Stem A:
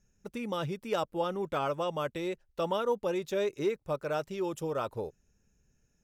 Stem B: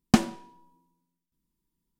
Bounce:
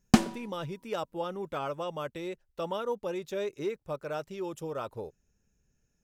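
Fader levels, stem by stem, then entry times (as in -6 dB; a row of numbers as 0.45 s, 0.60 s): -3.0 dB, -1.0 dB; 0.00 s, 0.00 s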